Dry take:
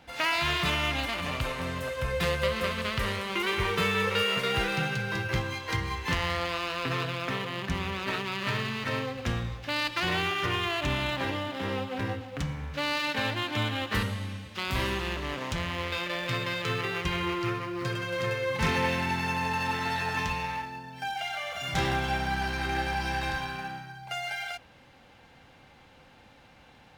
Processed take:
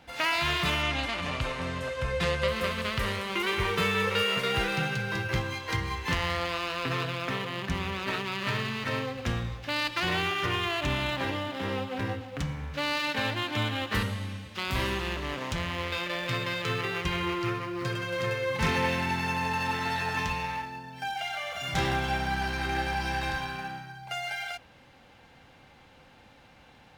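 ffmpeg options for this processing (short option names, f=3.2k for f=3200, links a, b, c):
-filter_complex "[0:a]asettb=1/sr,asplit=3[a][b][c];[a]atrim=end=0.824[d];[b]atrim=start=0.82:end=2.48,asetpts=PTS-STARTPTS,afade=t=in:d=0.004:c=qsin,afade=t=out:st=1.656:d=0.004:c=qsin,lowpass=8.4k[e];[c]atrim=start=2.476[f];[d][e]acrossfade=d=0.004:c1=hsin:c2=qsin[g];[g][f]acrossfade=d=0.004:c1=qsin:c2=hsin"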